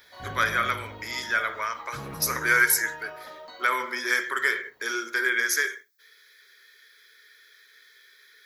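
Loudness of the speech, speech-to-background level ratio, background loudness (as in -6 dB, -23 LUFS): -25.5 LUFS, 16.0 dB, -41.5 LUFS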